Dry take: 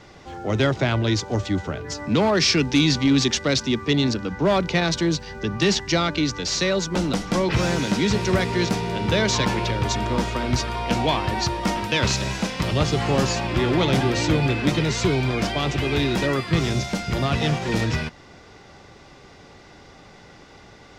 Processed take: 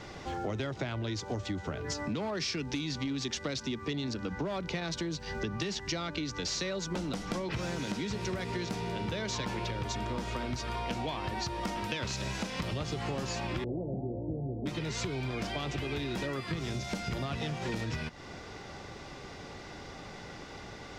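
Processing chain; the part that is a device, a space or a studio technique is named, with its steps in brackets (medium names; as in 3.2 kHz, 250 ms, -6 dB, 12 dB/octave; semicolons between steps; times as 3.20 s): serial compression, leveller first (compression 2:1, threshold -23 dBFS, peak gain reduction 5.5 dB; compression 6:1, threshold -34 dBFS, peak gain reduction 14.5 dB); 13.64–14.66 s: steep low-pass 710 Hz 48 dB/octave; trim +1.5 dB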